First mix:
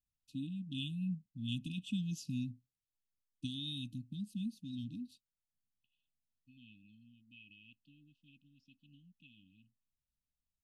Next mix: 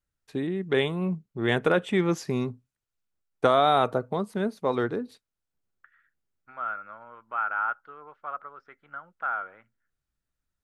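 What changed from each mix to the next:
first voice +8.5 dB; master: remove brick-wall FIR band-stop 300–2500 Hz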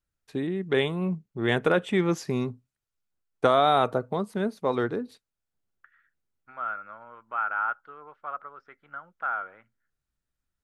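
no change

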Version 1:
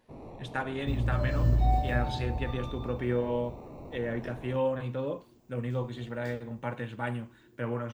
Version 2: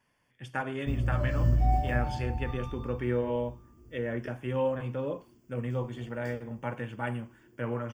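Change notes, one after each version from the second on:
first sound: muted; master: add Butterworth band-stop 3.9 kHz, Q 3.9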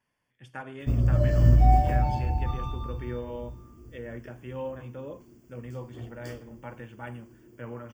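speech -6.5 dB; background +6.5 dB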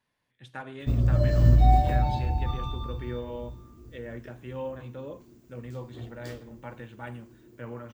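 master: remove Butterworth band-stop 3.9 kHz, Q 3.9

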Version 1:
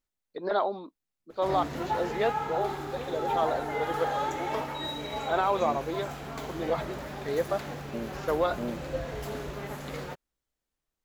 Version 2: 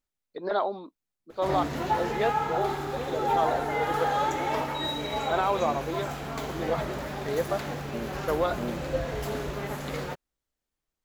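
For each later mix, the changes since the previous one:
background +4.0 dB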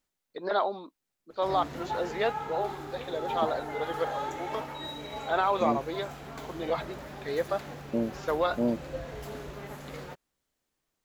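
first voice: add tilt shelf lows -3 dB, about 790 Hz; second voice +7.5 dB; background -8.0 dB

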